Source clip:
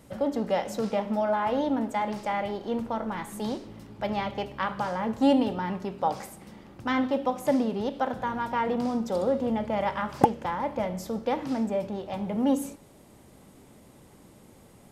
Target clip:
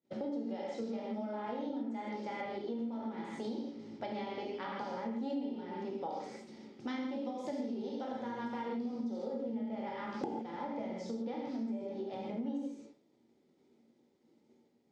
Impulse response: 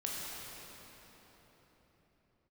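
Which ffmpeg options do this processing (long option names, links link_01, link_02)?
-filter_complex "[0:a]highpass=210,equalizer=frequency=230:width_type=q:width=4:gain=4,equalizer=frequency=350:width_type=q:width=4:gain=6,equalizer=frequency=640:width_type=q:width=4:gain=-4,equalizer=frequency=1100:width_type=q:width=4:gain=-10,equalizer=frequency=1600:width_type=q:width=4:gain=-7,equalizer=frequency=2800:width_type=q:width=4:gain=-5,lowpass=frequency=5700:width=0.5412,lowpass=frequency=5700:width=1.3066,agate=range=-33dB:threshold=-41dB:ratio=3:detection=peak,asettb=1/sr,asplit=3[link_01][link_02][link_03];[link_01]atrim=end=6.464[link_04];[link_02]atrim=start=6.46:end=8.76,asetpts=PTS-STARTPTS,afade=type=in:duration=0.004:curve=qsin,afade=type=out:start_time=2.296:duration=0.004:curve=qsin,aemphasis=mode=production:type=cd[link_05];[link_03]atrim=start=8.756[link_06];[link_04][link_05]acrossfade=duration=0.004:curve1=hsin:curve2=qsin[link_07];[link_07][link_06]acrossfade=duration=0.004:curve1=qsin:curve2=hsin[link_08];[1:a]atrim=start_sample=2205,afade=type=out:start_time=0.31:duration=0.01,atrim=end_sample=14112,asetrate=66150,aresample=44100[link_09];[link_08][link_09]afir=irnorm=-1:irlink=0,acompressor=threshold=-41dB:ratio=5,volume=3.5dB"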